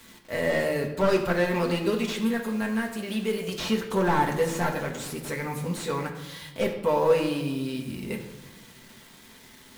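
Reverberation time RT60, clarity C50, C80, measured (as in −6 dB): 1.1 s, 8.0 dB, 10.0 dB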